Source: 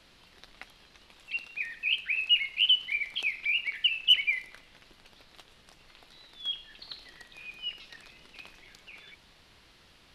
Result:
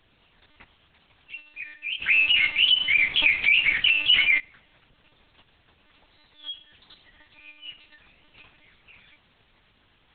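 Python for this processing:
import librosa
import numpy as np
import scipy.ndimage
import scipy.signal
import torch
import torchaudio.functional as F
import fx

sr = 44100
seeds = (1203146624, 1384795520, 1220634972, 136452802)

y = fx.leveller(x, sr, passes=5, at=(2.01, 4.38))
y = fx.doubler(y, sr, ms=14.0, db=-5)
y = fx.lpc_monotone(y, sr, seeds[0], pitch_hz=300.0, order=8)
y = F.gain(torch.from_numpy(y), -4.0).numpy()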